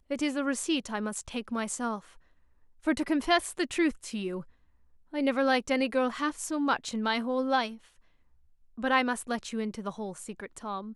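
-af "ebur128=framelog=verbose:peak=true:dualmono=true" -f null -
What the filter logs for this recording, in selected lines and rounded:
Integrated loudness:
  I:         -27.1 LUFS
  Threshold: -37.6 LUFS
Loudness range:
  LRA:         3.4 LU
  Threshold: -47.6 LUFS
  LRA low:   -29.4 LUFS
  LRA high:  -26.0 LUFS
True peak:
  Peak:      -10.7 dBFS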